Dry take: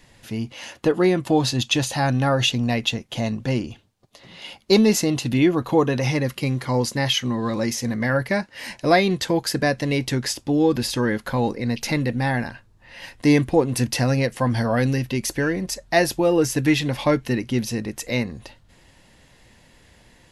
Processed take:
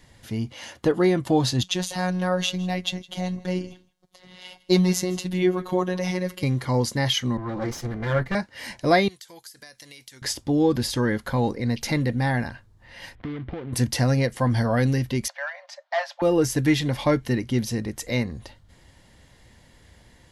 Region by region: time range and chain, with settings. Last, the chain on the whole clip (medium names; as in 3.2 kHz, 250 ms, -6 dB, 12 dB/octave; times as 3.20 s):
1.63–6.43 s: robot voice 182 Hz + delay 161 ms -21.5 dB
7.37–8.35 s: comb filter that takes the minimum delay 5.8 ms + low-pass 2.9 kHz 6 dB/octave + three bands expanded up and down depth 70%
9.08–10.22 s: pre-emphasis filter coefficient 0.97 + compression 20:1, threshold -37 dBFS
13.15–13.73 s: dead-time distortion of 0.26 ms + low-pass 3.2 kHz 24 dB/octave + compression 20:1, threshold -27 dBFS
15.28–16.22 s: hard clipper -15.5 dBFS + brick-wall FIR high-pass 540 Hz + distance through air 220 m
whole clip: peaking EQ 73 Hz +6 dB 1.4 oct; band-stop 2.6 kHz, Q 11; trim -2 dB